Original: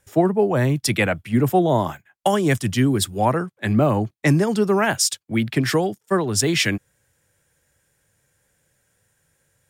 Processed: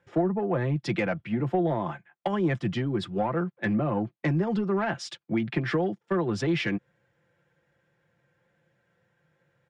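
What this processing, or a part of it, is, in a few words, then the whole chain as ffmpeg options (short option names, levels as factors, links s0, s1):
AM radio: -af "highpass=110,lowpass=3600,acompressor=threshold=0.0794:ratio=10,asoftclip=type=tanh:threshold=0.141,aemphasis=mode=reproduction:type=75kf,aecho=1:1:5.8:0.53"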